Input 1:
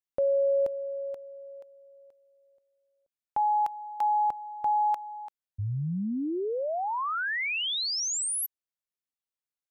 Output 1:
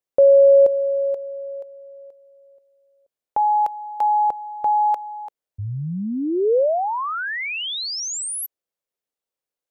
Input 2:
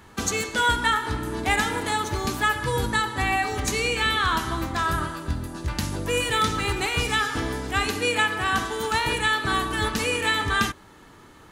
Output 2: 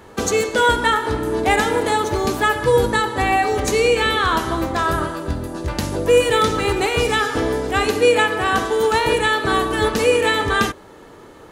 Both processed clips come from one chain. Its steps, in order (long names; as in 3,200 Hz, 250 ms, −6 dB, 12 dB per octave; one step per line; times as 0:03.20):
parametric band 500 Hz +11.5 dB 1.2 octaves
level +2.5 dB